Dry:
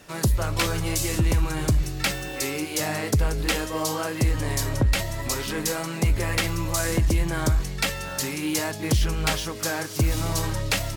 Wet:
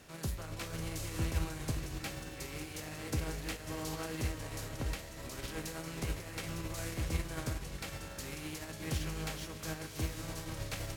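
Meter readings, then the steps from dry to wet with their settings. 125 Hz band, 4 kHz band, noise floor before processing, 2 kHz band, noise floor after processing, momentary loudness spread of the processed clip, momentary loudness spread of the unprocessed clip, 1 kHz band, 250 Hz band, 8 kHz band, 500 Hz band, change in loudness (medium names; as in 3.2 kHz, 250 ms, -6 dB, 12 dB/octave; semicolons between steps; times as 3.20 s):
-14.0 dB, -15.0 dB, -33 dBFS, -15.0 dB, -47 dBFS, 6 LU, 4 LU, -15.0 dB, -13.5 dB, -15.5 dB, -14.5 dB, -14.5 dB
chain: spectral levelling over time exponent 0.6; peak limiter -15 dBFS, peak gain reduction 6 dB; feedback comb 80 Hz, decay 0.23 s, harmonics all, mix 60%; echo that smears into a reverb 581 ms, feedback 59%, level -8 dB; upward expansion 2.5:1, over -30 dBFS; trim -5.5 dB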